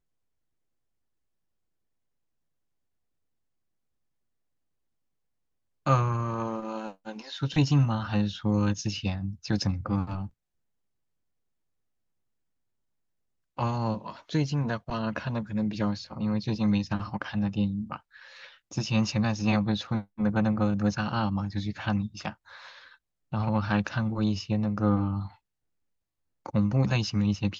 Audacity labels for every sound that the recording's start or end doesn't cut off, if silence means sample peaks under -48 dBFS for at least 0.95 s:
5.860000	10.290000	sound
13.580000	25.350000	sound